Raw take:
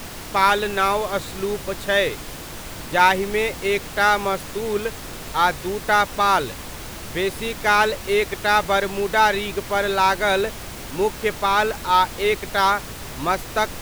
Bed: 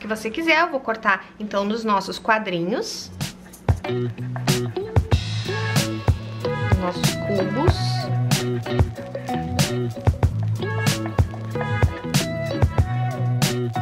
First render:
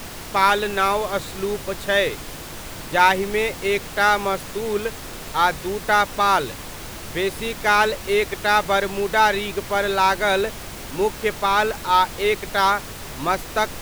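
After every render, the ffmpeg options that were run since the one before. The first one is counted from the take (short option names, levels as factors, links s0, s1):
-af "bandreject=f=60:t=h:w=4,bandreject=f=120:t=h:w=4,bandreject=f=180:t=h:w=4,bandreject=f=240:t=h:w=4,bandreject=f=300:t=h:w=4"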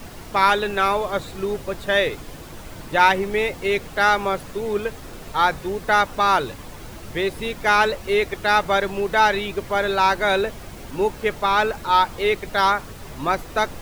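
-af "afftdn=nr=8:nf=-35"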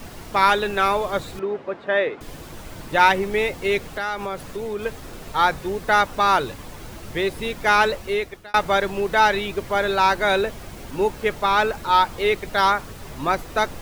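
-filter_complex "[0:a]asettb=1/sr,asplit=3[s0][s1][s2];[s0]atrim=end=1.394[s3];[s1]atrim=start=1.39:end=2.21,asetpts=PTS-STARTPTS,afade=t=in:d=0.004:c=qsin,afade=t=out:st=0.816:d=0.004:c=qsin,highpass=250,lowpass=2000[s4];[s2]atrim=start=2.206[s5];[s3][s4]acrossfade=d=0.004:c1=hsin:c2=qsin[s6];[s6][s5]acrossfade=d=0.004:c1=qsin:c2=hsin,asettb=1/sr,asplit=3[s7][s8][s9];[s7]atrim=end=3.894[s10];[s8]atrim=start=3.89:end=4.86,asetpts=PTS-STARTPTS,afade=t=in:d=0.004:c=qsin,afade=t=out:st=0.966:d=0.004:c=qsin,acompressor=threshold=0.0562:ratio=3:attack=3.2:release=140:knee=1:detection=peak[s11];[s9]atrim=start=4.856[s12];[s10][s11]acrossfade=d=0.004:c1=hsin:c2=qsin[s13];[s13][s12]acrossfade=d=0.004:c1=qsin:c2=hsin,asplit=2[s14][s15];[s14]atrim=end=8.54,asetpts=PTS-STARTPTS,afade=t=out:st=7.95:d=0.59[s16];[s15]atrim=start=8.54,asetpts=PTS-STARTPTS,afade=t=in:d=0.004:c=hsin[s17];[s16][s17]concat=n=2:v=0:a=1"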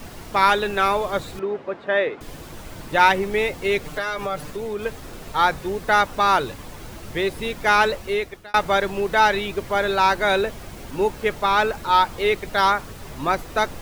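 -filter_complex "[0:a]asettb=1/sr,asplit=3[s0][s1][s2];[s0]atrim=end=3.844[s3];[s1]atrim=start=3.84:end=4.5,asetpts=PTS-STARTPTS,afade=t=in:d=0.004:c=qsin,afade=t=out:st=0.656:d=0.004:c=qsin,aecho=1:1:6.7:0.76,atrim=end_sample=29106[s4];[s2]atrim=start=4.496[s5];[s3][s4]acrossfade=d=0.004:c1=hsin:c2=qsin[s6];[s6][s5]acrossfade=d=0.004:c1=qsin:c2=hsin"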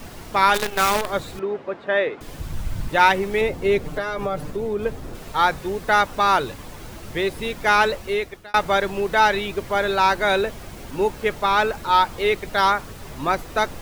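-filter_complex "[0:a]asettb=1/sr,asplit=3[s0][s1][s2];[s0]atrim=end=0.544[s3];[s1]atrim=start=0.54:end=1.1,asetpts=PTS-STARTPTS,afade=t=in:d=0.004:c=qsin,afade=t=out:st=0.556:d=0.004:c=qsin,acrusher=bits=4:dc=4:mix=0:aa=0.000001[s4];[s2]atrim=start=1.096[s5];[s3][s4]acrossfade=d=0.004:c1=hsin:c2=qsin[s6];[s6][s5]acrossfade=d=0.004:c1=qsin:c2=hsin,asplit=3[s7][s8][s9];[s7]afade=t=out:st=2.38:d=0.02[s10];[s8]asubboost=boost=7:cutoff=160,afade=t=in:st=2.38:d=0.02,afade=t=out:st=2.88:d=0.02[s11];[s9]afade=t=in:st=2.88:d=0.02[s12];[s10][s11][s12]amix=inputs=3:normalize=0,asettb=1/sr,asplit=3[s13][s14][s15];[s13]atrim=end=3.414[s16];[s14]atrim=start=3.41:end=5.15,asetpts=PTS-STARTPTS,afade=t=in:d=0.004:c=qsin,afade=t=out:st=1.736:d=0.004:c=qsin,tiltshelf=f=910:g=5[s17];[s15]atrim=start=5.146[s18];[s16][s17]acrossfade=d=0.004:c1=hsin:c2=qsin[s19];[s19][s18]acrossfade=d=0.004:c1=qsin:c2=hsin"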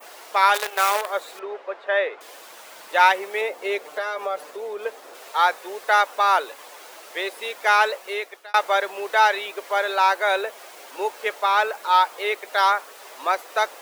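-af "highpass=f=490:w=0.5412,highpass=f=490:w=1.3066,adynamicequalizer=threshold=0.0141:dfrequency=4600:dqfactor=0.75:tfrequency=4600:tqfactor=0.75:attack=5:release=100:ratio=0.375:range=2.5:mode=cutabove:tftype=bell"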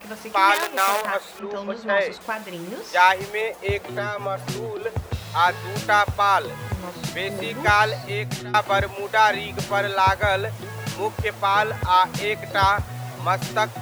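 -filter_complex "[1:a]volume=0.316[s0];[0:a][s0]amix=inputs=2:normalize=0"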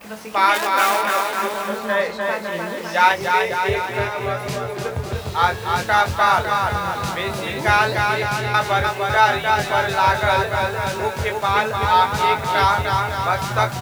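-filter_complex "[0:a]asplit=2[s0][s1];[s1]adelay=23,volume=0.473[s2];[s0][s2]amix=inputs=2:normalize=0,asplit=2[s3][s4];[s4]aecho=0:1:300|555|771.8|956|1113:0.631|0.398|0.251|0.158|0.1[s5];[s3][s5]amix=inputs=2:normalize=0"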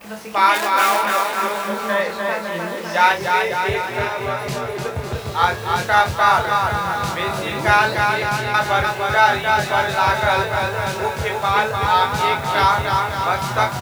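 -filter_complex "[0:a]asplit=2[s0][s1];[s1]adelay=29,volume=0.422[s2];[s0][s2]amix=inputs=2:normalize=0,aecho=1:1:1003:0.178"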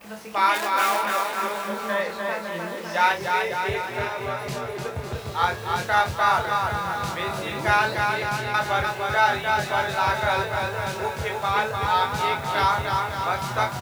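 -af "volume=0.531"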